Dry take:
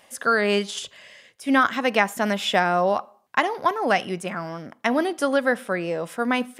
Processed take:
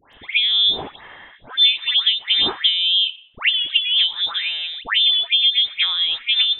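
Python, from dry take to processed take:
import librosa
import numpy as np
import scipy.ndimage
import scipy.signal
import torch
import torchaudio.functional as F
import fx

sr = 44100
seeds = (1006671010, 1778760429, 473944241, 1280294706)

y = fx.env_lowpass_down(x, sr, base_hz=580.0, full_db=-17.0)
y = fx.freq_invert(y, sr, carrier_hz=3800)
y = fx.dispersion(y, sr, late='highs', ms=137.0, hz=1800.0)
y = y * librosa.db_to_amplitude(6.5)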